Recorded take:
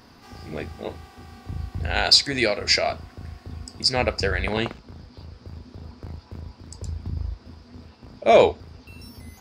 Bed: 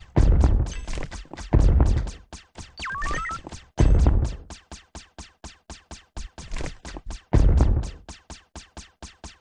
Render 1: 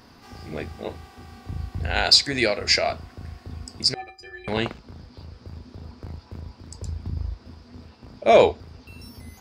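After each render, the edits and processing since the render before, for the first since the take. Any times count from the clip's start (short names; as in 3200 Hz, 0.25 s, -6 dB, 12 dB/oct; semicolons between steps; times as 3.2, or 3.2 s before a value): 3.94–4.48 metallic resonator 360 Hz, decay 0.37 s, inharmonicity 0.03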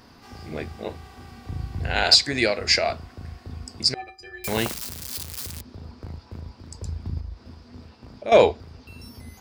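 0.99–2.15 flutter echo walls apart 11.6 m, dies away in 0.52 s; 4.44–5.61 switching spikes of -20.5 dBFS; 7.2–8.32 compressor 2:1, threshold -34 dBFS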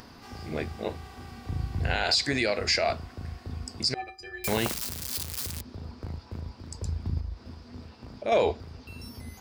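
upward compressor, threshold -45 dBFS; limiter -14.5 dBFS, peak gain reduction 11 dB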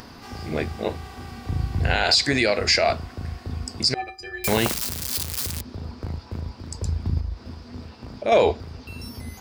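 gain +6 dB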